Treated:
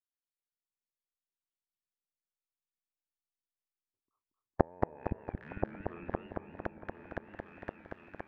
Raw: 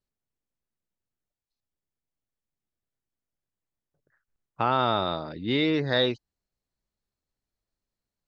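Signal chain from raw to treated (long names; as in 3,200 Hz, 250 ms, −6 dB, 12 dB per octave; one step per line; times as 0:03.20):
loose part that buzzes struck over −39 dBFS, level −22 dBFS
pitch shifter −6.5 semitones
downward expander −34 dBFS
low-shelf EQ 150 Hz −12 dB
downward compressor, threshold −29 dBFS, peak gain reduction 9.5 dB
gate with flip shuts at −26 dBFS, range −32 dB
on a send: echo whose low-pass opens from repeat to repeat 514 ms, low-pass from 200 Hz, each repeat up 2 octaves, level −3 dB
on the sum: treble cut that deepens with the level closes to 660 Hz, closed at −55 dBFS
feedback echo with a swinging delay time 228 ms, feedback 51%, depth 151 cents, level −4 dB
level +15.5 dB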